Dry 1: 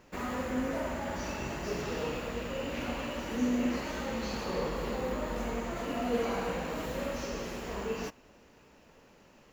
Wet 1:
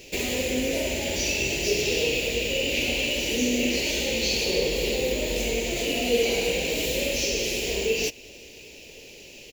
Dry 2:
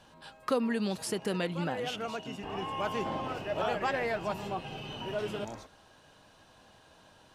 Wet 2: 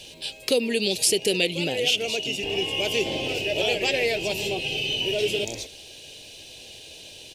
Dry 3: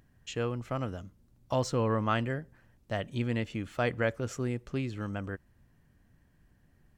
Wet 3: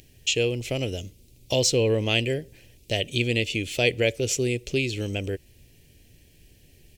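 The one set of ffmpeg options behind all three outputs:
-filter_complex "[0:a]firequalizer=gain_entry='entry(100,0);entry(200,-6);entry(400,6);entry(1200,-22);entry(2400,12)':delay=0.05:min_phase=1,asplit=2[a][b];[b]acompressor=threshold=-37dB:ratio=6,volume=0dB[c];[a][c]amix=inputs=2:normalize=0,volume=3.5dB"

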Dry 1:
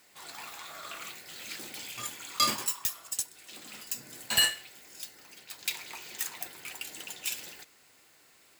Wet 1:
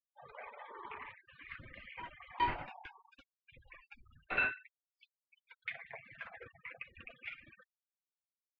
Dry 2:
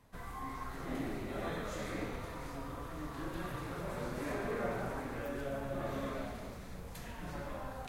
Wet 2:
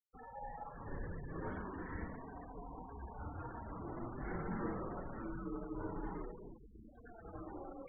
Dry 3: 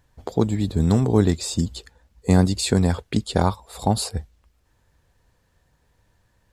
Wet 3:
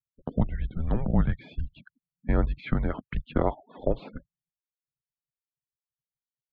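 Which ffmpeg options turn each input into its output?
-af "afftfilt=real='re*gte(hypot(re,im),0.00891)':imag='im*gte(hypot(re,im),0.00891)':win_size=1024:overlap=0.75,highpass=f=200:t=q:w=0.5412,highpass=f=200:t=q:w=1.307,lowpass=f=2.7k:t=q:w=0.5176,lowpass=f=2.7k:t=q:w=0.7071,lowpass=f=2.7k:t=q:w=1.932,afreqshift=-240,volume=-2.5dB"

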